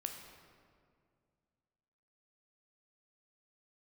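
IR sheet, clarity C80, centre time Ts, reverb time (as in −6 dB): 6.5 dB, 46 ms, 2.2 s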